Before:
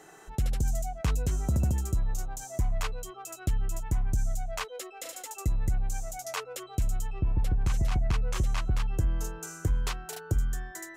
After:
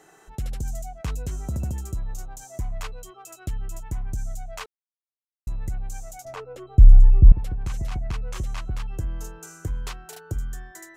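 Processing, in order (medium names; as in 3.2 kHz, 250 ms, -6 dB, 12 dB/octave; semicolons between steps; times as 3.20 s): 4.66–5.47 s: mute; 6.25–7.32 s: tilt EQ -4.5 dB/octave; trim -2 dB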